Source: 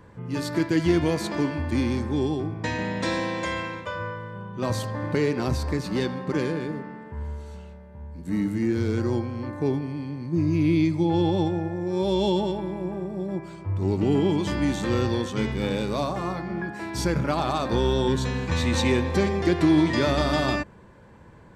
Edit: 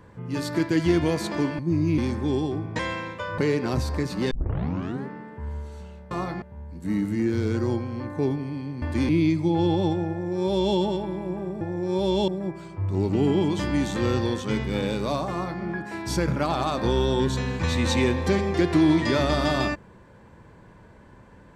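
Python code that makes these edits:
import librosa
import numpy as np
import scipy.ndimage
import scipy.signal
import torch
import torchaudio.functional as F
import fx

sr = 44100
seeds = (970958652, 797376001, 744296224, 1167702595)

y = fx.edit(x, sr, fx.swap(start_s=1.59, length_s=0.27, other_s=10.25, other_length_s=0.39),
    fx.cut(start_s=2.67, length_s=0.79),
    fx.cut(start_s=4.05, length_s=1.07),
    fx.tape_start(start_s=6.05, length_s=0.76),
    fx.duplicate(start_s=11.65, length_s=0.67, to_s=13.16),
    fx.duplicate(start_s=16.19, length_s=0.31, to_s=7.85), tone=tone)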